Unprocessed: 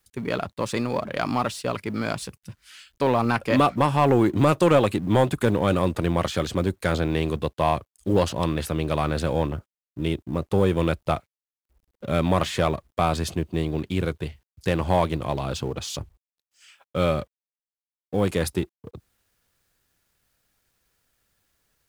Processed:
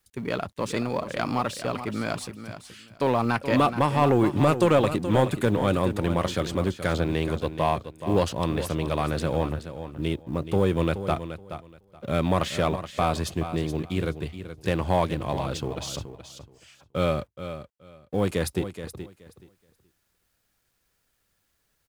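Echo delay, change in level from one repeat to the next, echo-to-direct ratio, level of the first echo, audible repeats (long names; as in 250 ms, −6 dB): 425 ms, −14.5 dB, −11.0 dB, −11.0 dB, 2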